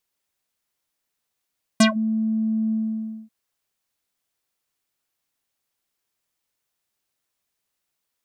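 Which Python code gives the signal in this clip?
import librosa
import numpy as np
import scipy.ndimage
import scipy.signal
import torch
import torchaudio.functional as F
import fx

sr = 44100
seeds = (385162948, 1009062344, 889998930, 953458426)

y = fx.sub_voice(sr, note=57, wave='square', cutoff_hz=250.0, q=4.6, env_oct=5.5, env_s=0.16, attack_ms=5.9, decay_s=0.11, sustain_db=-20.5, release_s=0.57, note_s=0.92, slope=12)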